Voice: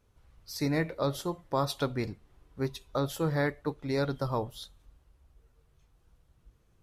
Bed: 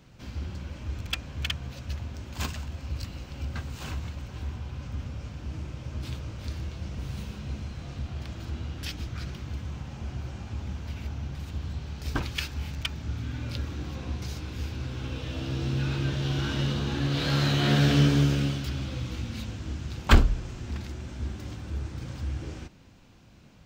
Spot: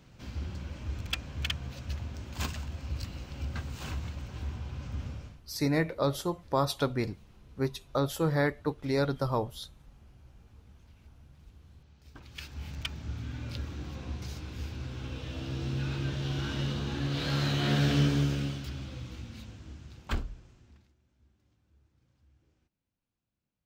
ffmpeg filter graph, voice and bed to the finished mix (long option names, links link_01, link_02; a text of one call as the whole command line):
ffmpeg -i stem1.wav -i stem2.wav -filter_complex "[0:a]adelay=5000,volume=1.5dB[link_01];[1:a]volume=15dB,afade=type=out:start_time=5.1:duration=0.31:silence=0.105925,afade=type=in:start_time=12.2:duration=0.57:silence=0.141254,afade=type=out:start_time=17.98:duration=2.97:silence=0.0354813[link_02];[link_01][link_02]amix=inputs=2:normalize=0" out.wav